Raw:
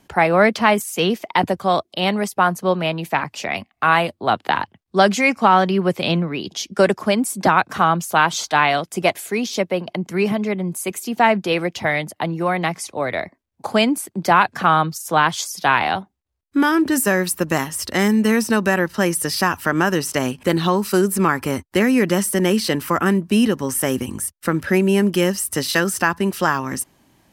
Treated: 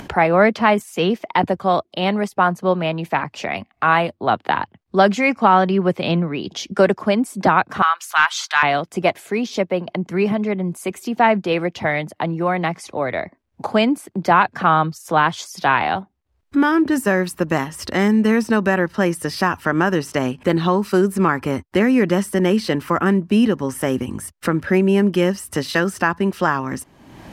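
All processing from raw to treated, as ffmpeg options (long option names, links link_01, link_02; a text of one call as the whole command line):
ffmpeg -i in.wav -filter_complex "[0:a]asettb=1/sr,asplit=3[link_01][link_02][link_03];[link_01]atrim=end=7.824[link_04];[link_02]atrim=start=7.82:end=8.63,asetpts=PTS-STARTPTS,afade=type=in:duration=0.004:curve=qsin,afade=type=out:start_time=0.806:duration=0.004:curve=qsin,highpass=frequency=1200:width=0.5412,highpass=frequency=1200:width=1.3066,acontrast=35[link_05];[link_03]atrim=start=8.626[link_06];[link_04][link_05]acrossfade=duration=0.004:curve1=hsin:curve2=qsin[link_07];[link_07][link_06]acrossfade=duration=0.004:curve1=qsin:curve2=hsin,lowpass=frequency=2300:poles=1,acompressor=mode=upward:threshold=-22dB:ratio=2.5,volume=1dB" out.wav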